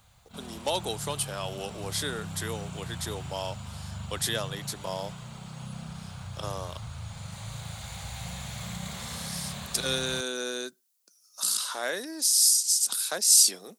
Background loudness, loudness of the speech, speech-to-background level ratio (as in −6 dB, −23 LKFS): −39.5 LKFS, −26.0 LKFS, 13.5 dB